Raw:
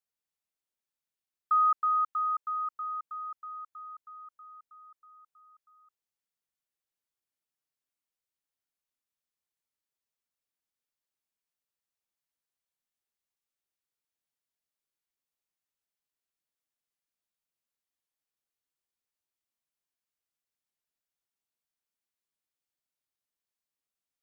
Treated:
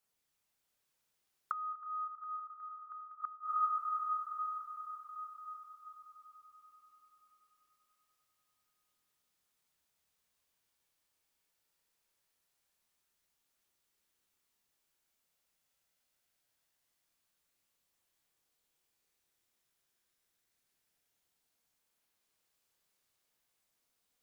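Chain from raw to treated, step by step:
multi-voice chorus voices 2, 0.11 Hz, delay 29 ms, depth 1.6 ms
echo that builds up and dies away 97 ms, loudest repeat 5, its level −11.5 dB
gate with flip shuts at −33 dBFS, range −25 dB
level +11.5 dB

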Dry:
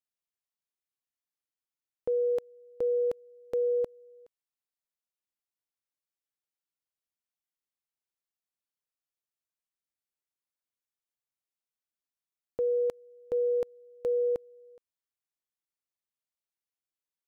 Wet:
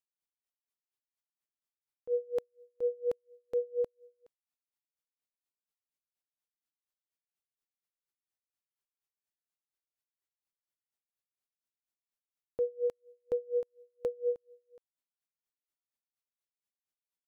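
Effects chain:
tremolo with a sine in dB 4.2 Hz, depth 27 dB

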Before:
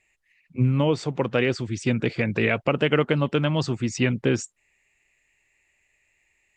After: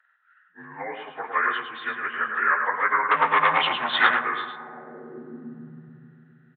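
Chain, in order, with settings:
partials spread apart or drawn together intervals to 85%
parametric band 230 Hz +6 dB 0.21 octaves
0:03.11–0:04.22: leveller curve on the samples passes 3
downsampling to 8,000 Hz
0:00.65–0:01.07: high-frequency loss of the air 450 metres
single-tap delay 107 ms −6 dB
on a send at −10.5 dB: convolution reverb RT60 3.1 s, pre-delay 3 ms
on the sum: high-pass filter sweep 1,100 Hz → 140 Hz, 0:04.51–0:05.82
level +1.5 dB

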